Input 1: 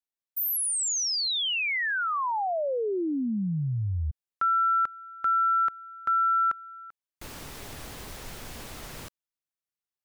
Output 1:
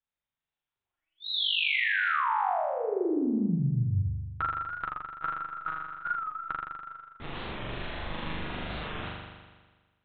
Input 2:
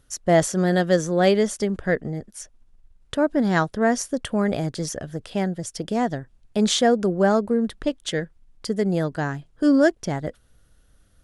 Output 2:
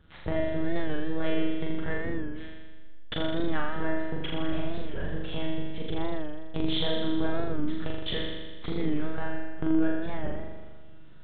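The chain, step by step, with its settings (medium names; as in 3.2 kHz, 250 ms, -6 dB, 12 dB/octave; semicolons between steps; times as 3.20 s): in parallel at -4 dB: one-sided clip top -19.5 dBFS, bottom -10.5 dBFS; on the sum: monotone LPC vocoder at 8 kHz 160 Hz; compression 2.5:1, threshold -31 dBFS; dynamic bell 540 Hz, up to -7 dB, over -47 dBFS, Q 3.7; on a send: flutter echo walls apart 7 m, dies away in 1.4 s; on the sum: warped record 45 rpm, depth 100 cents; trim -2 dB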